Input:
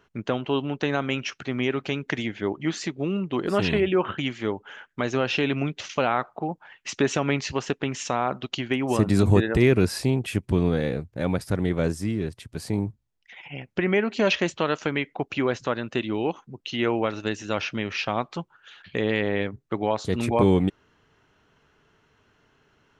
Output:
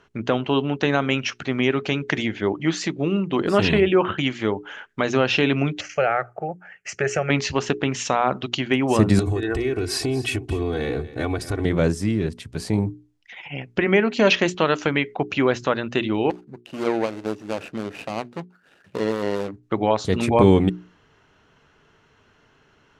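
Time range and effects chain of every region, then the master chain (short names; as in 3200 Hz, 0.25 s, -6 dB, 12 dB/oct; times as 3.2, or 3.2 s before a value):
5.81–7.3 HPF 43 Hz + fixed phaser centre 1000 Hz, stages 6
9.19–11.65 comb 2.7 ms, depth 84% + compressor 12:1, threshold -24 dBFS + echo 0.237 s -16.5 dB
16.3–19.63 median filter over 41 samples + HPF 250 Hz 6 dB/oct
whole clip: LPF 9900 Hz 12 dB/oct; notches 60/120/180/240/300/360/420 Hz; gain +5 dB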